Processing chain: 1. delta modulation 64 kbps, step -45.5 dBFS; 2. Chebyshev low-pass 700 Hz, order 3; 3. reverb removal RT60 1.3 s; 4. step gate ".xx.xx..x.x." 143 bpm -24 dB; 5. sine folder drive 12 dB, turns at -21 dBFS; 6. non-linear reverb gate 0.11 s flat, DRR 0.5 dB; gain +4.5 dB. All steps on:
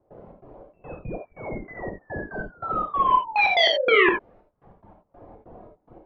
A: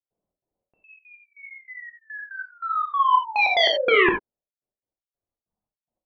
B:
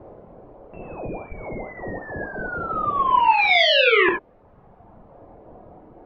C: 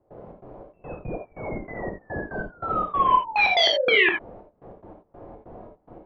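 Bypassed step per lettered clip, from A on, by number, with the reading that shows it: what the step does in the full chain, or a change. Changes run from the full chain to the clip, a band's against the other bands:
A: 1, momentary loudness spread change +2 LU; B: 4, 250 Hz band -2.5 dB; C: 3, 250 Hz band -2.5 dB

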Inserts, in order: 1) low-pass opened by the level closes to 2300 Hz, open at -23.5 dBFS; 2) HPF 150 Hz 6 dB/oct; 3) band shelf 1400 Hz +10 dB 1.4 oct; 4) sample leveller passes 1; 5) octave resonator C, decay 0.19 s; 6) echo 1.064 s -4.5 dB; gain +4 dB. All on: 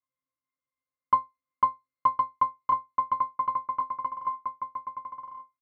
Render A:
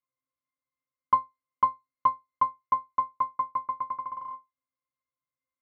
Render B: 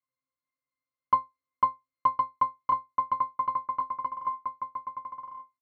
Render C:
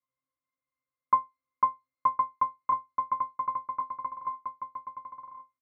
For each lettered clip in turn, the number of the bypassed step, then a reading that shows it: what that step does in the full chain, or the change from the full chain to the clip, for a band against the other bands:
6, momentary loudness spread change -2 LU; 1, loudness change -1.0 LU; 4, momentary loudness spread change +4 LU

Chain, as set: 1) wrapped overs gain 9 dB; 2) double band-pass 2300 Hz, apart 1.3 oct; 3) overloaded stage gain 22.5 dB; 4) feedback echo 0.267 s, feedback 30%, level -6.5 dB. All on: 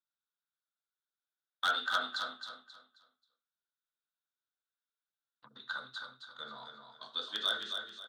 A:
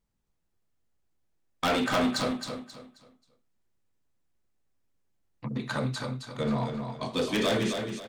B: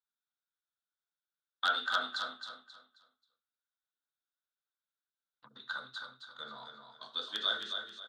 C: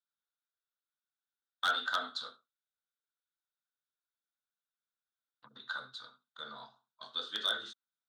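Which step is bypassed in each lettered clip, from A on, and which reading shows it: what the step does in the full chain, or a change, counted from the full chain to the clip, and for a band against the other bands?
2, 125 Hz band +24.5 dB; 3, distortion -21 dB; 4, crest factor change -2.0 dB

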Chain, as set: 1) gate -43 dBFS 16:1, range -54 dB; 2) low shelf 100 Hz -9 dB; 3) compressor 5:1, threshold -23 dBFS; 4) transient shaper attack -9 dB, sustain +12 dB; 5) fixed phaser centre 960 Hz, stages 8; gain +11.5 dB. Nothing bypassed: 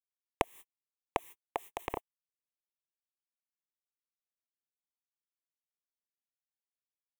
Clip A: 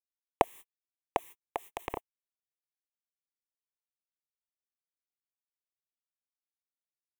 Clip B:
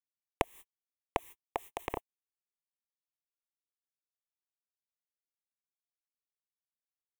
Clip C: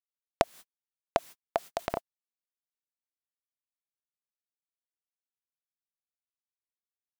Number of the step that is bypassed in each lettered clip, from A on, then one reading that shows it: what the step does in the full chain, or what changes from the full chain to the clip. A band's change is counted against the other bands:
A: 3, mean gain reduction 3.0 dB; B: 2, 125 Hz band +2.5 dB; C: 5, 500 Hz band +3.5 dB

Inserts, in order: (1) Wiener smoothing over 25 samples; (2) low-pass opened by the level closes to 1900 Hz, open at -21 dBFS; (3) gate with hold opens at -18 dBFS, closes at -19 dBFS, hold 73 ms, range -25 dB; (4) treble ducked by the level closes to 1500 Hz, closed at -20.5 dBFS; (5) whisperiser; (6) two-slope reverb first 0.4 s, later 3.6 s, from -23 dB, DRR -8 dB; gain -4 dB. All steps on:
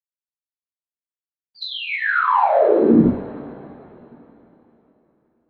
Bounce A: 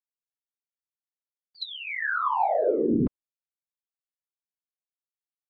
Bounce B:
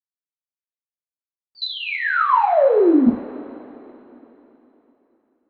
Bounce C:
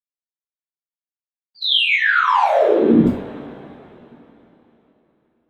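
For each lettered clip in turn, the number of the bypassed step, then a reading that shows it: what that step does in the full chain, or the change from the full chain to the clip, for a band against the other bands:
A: 6, crest factor change -2.5 dB; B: 5, crest factor change -3.0 dB; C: 4, 4 kHz band +12.0 dB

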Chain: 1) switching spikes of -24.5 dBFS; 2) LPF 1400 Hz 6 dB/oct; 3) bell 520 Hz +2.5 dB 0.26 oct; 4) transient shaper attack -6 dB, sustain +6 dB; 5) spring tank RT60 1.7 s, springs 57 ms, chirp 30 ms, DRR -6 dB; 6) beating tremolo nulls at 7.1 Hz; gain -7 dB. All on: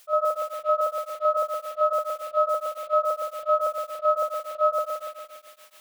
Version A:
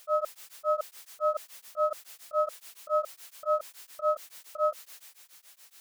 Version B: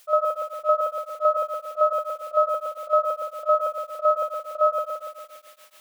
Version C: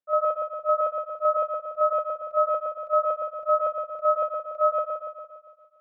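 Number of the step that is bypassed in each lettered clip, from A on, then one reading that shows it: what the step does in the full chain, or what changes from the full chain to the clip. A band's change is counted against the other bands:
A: 5, momentary loudness spread change +9 LU; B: 4, momentary loudness spread change +1 LU; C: 1, distortion -10 dB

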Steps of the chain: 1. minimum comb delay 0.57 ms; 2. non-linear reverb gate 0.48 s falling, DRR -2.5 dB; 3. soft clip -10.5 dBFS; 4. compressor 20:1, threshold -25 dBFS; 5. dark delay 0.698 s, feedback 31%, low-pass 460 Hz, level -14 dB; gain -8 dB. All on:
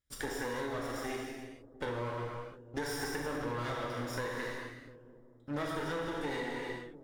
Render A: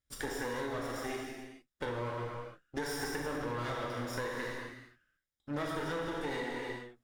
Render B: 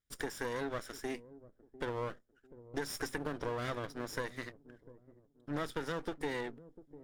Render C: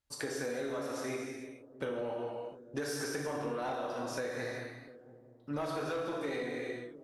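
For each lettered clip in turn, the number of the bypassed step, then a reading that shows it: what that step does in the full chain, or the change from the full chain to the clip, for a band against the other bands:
5, momentary loudness spread change -2 LU; 2, momentary loudness spread change +9 LU; 1, 500 Hz band +3.5 dB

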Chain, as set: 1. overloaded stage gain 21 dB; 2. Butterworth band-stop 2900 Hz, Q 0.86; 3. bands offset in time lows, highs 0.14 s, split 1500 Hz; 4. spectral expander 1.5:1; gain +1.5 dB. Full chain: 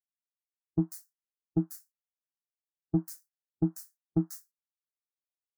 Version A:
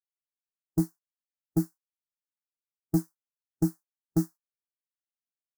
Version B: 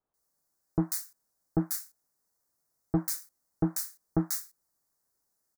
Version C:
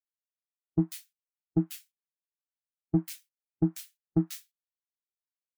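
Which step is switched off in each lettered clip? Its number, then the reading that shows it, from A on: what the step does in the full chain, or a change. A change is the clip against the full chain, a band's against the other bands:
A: 3, momentary loudness spread change -8 LU; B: 4, 8 kHz band +12.0 dB; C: 2, loudness change +2.0 LU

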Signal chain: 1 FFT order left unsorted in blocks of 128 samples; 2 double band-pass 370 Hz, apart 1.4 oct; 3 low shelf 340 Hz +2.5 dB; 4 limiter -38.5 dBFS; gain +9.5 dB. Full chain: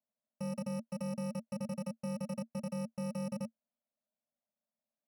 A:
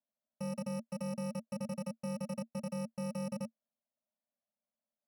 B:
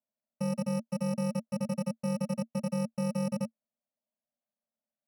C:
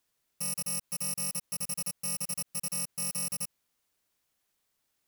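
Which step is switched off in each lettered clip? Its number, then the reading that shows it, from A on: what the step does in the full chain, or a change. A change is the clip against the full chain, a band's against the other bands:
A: 3, 125 Hz band -1.5 dB; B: 4, mean gain reduction 5.0 dB; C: 2, 8 kHz band +25.5 dB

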